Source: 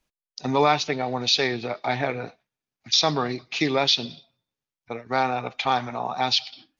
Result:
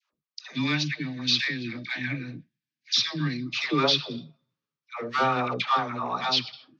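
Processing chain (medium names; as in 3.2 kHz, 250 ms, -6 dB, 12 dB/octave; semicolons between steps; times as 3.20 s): 0.44–3.43 s: time-frequency box 360–1500 Hz -19 dB; 4.96–5.55 s: waveshaping leveller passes 1; saturation -15 dBFS, distortion -15 dB; cabinet simulation 140–5700 Hz, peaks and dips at 150 Hz +6 dB, 750 Hz -8 dB, 1.2 kHz +9 dB; phase dispersion lows, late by 129 ms, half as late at 700 Hz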